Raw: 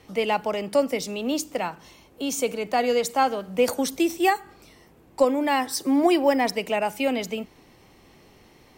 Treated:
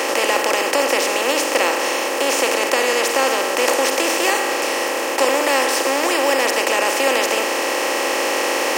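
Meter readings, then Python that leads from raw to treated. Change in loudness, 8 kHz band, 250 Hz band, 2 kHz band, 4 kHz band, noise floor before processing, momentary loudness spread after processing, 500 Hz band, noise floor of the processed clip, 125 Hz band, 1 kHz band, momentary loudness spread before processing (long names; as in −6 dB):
+6.5 dB, +13.0 dB, −1.0 dB, +13.5 dB, +12.5 dB, −55 dBFS, 3 LU, +6.0 dB, −22 dBFS, can't be measured, +6.5 dB, 9 LU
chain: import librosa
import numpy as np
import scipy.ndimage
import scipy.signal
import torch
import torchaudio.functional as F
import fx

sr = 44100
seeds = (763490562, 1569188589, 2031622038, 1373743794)

p1 = fx.bin_compress(x, sr, power=0.2)
p2 = scipy.signal.sosfilt(scipy.signal.butter(2, 540.0, 'highpass', fs=sr, output='sos'), p1)
p3 = fx.peak_eq(p2, sr, hz=730.0, db=-11.5, octaves=0.25)
p4 = fx.rider(p3, sr, range_db=10, speed_s=2.0)
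p5 = p3 + (p4 * librosa.db_to_amplitude(2.5))
y = p5 * librosa.db_to_amplitude(-7.0)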